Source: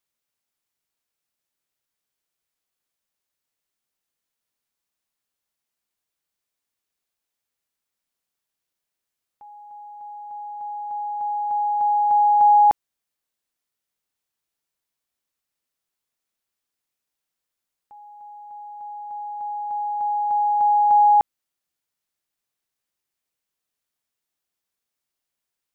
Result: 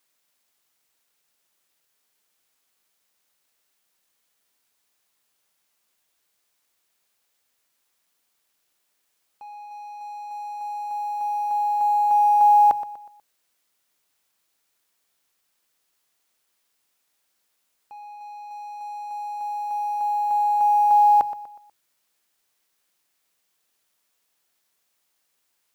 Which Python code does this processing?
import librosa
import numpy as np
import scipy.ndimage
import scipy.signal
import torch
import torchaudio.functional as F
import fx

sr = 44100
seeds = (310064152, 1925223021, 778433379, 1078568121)

p1 = fx.law_mismatch(x, sr, coded='mu')
p2 = fx.low_shelf(p1, sr, hz=250.0, db=-7.5)
p3 = fx.hum_notches(p2, sr, base_hz=50, count=3)
y = p3 + fx.echo_feedback(p3, sr, ms=122, feedback_pct=39, wet_db=-13.5, dry=0)